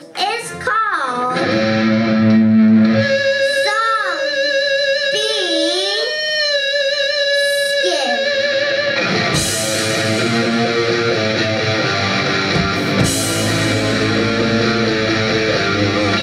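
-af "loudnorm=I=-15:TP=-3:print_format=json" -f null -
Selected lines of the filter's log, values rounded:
"input_i" : "-15.2",
"input_tp" : "-2.9",
"input_lra" : "1.9",
"input_thresh" : "-25.2",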